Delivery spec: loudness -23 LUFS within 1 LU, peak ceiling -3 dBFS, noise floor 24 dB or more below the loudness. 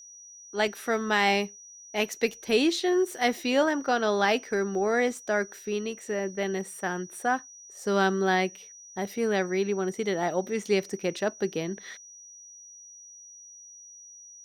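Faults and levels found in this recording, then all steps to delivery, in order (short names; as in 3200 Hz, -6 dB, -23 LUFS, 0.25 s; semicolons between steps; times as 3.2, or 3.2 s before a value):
steady tone 5800 Hz; tone level -46 dBFS; loudness -27.5 LUFS; peak -11.0 dBFS; loudness target -23.0 LUFS
-> notch 5800 Hz, Q 30; gain +4.5 dB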